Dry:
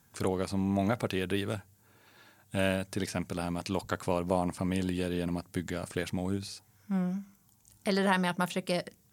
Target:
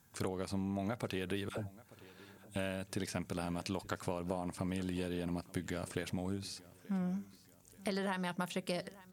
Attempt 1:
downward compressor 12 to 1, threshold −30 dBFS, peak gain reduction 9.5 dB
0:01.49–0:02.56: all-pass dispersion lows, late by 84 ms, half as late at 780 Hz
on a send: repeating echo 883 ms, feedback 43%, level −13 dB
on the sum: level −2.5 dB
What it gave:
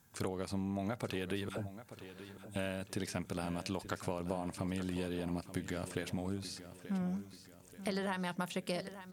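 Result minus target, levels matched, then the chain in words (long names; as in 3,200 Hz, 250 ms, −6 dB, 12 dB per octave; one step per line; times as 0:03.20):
echo-to-direct +7.5 dB
downward compressor 12 to 1, threshold −30 dBFS, peak gain reduction 9.5 dB
0:01.49–0:02.56: all-pass dispersion lows, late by 84 ms, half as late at 780 Hz
on a send: repeating echo 883 ms, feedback 43%, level −20.5 dB
on the sum: level −2.5 dB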